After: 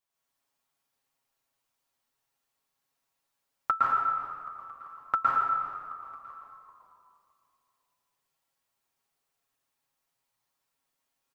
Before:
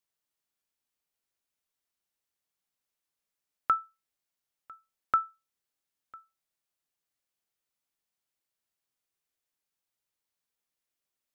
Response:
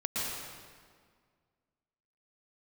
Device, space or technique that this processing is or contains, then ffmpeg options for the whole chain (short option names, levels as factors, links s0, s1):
stairwell: -filter_complex "[0:a]aecho=1:1:7.3:0.65[s0];[1:a]atrim=start_sample=2205[s1];[s0][s1]afir=irnorm=-1:irlink=0,equalizer=f=890:w=1.3:g=6.5,asplit=5[s2][s3][s4][s5][s6];[s3]adelay=388,afreqshift=-80,volume=0.141[s7];[s4]adelay=776,afreqshift=-160,volume=0.0661[s8];[s5]adelay=1164,afreqshift=-240,volume=0.0313[s9];[s6]adelay=1552,afreqshift=-320,volume=0.0146[s10];[s2][s7][s8][s9][s10]amix=inputs=5:normalize=0,volume=0.794"